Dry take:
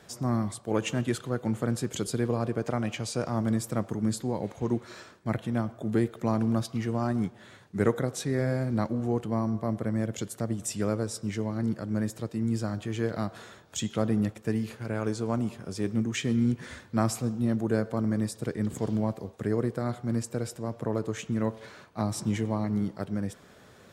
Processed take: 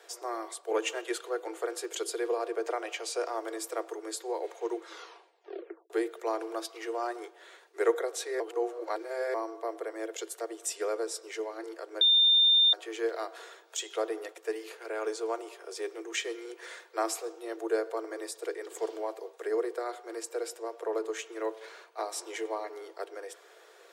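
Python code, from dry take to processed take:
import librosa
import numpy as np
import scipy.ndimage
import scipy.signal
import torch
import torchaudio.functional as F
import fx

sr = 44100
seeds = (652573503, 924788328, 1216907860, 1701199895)

y = fx.edit(x, sr, fx.tape_stop(start_s=4.81, length_s=1.09),
    fx.reverse_span(start_s=8.4, length_s=0.94),
    fx.bleep(start_s=12.01, length_s=0.72, hz=3610.0, db=-15.0), tone=tone)
y = scipy.signal.sosfilt(scipy.signal.cheby1(10, 1.0, 330.0, 'highpass', fs=sr, output='sos'), y)
y = y + 0.31 * np.pad(y, (int(4.3 * sr / 1000.0), 0))[:len(y)]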